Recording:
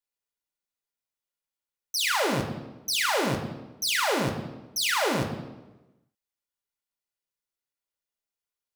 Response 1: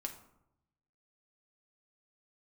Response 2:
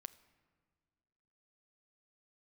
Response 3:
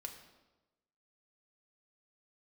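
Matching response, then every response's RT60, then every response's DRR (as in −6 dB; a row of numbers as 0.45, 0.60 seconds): 3; 0.80, 1.9, 1.1 seconds; 3.0, 13.5, 2.5 decibels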